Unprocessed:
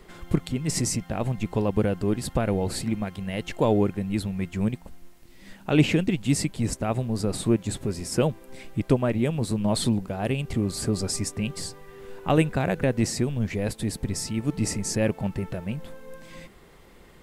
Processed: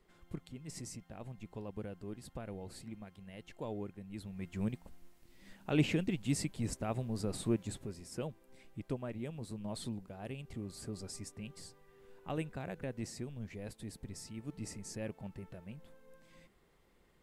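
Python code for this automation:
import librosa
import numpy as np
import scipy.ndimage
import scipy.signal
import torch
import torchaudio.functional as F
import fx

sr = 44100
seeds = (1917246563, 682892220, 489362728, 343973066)

y = fx.gain(x, sr, db=fx.line((4.08, -20.0), (4.6, -10.5), (7.61, -10.5), (8.02, -17.5)))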